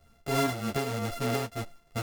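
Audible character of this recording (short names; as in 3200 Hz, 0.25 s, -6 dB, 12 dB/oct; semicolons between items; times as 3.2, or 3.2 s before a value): a buzz of ramps at a fixed pitch in blocks of 64 samples; tremolo triangle 3.2 Hz, depth 55%; a shimmering, thickened sound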